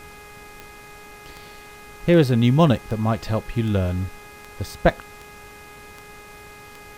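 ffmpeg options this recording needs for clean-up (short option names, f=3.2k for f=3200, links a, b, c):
-af "adeclick=t=4,bandreject=f=415.3:t=h:w=4,bandreject=f=830.6:t=h:w=4,bandreject=f=1.2459k:t=h:w=4,bandreject=f=1.6612k:t=h:w=4,bandreject=f=2.0765k:t=h:w=4,bandreject=f=2.4918k:t=h:w=4,afftdn=nr=24:nf=-43"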